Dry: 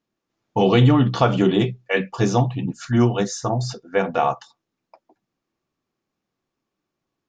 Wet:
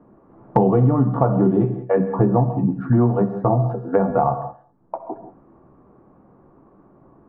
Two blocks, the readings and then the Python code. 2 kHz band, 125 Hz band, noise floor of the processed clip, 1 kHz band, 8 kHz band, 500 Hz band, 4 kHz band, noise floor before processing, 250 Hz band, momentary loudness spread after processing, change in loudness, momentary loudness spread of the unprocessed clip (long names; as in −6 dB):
−11.5 dB, +1.5 dB, −54 dBFS, +1.0 dB, can't be measured, +1.5 dB, below −30 dB, −82 dBFS, +1.5 dB, 17 LU, +1.0 dB, 9 LU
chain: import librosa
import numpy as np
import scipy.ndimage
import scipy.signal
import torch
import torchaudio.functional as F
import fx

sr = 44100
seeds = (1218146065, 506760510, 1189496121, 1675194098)

p1 = scipy.signal.sosfilt(scipy.signal.butter(4, 1100.0, 'lowpass', fs=sr, output='sos'), x)
p2 = fx.doubler(p1, sr, ms=15.0, db=-12)
p3 = p2 + fx.echo_feedback(p2, sr, ms=66, feedback_pct=45, wet_db=-20.5, dry=0)
p4 = fx.rev_gated(p3, sr, seeds[0], gate_ms=210, shape='flat', drr_db=11.0)
y = fx.band_squash(p4, sr, depth_pct=100)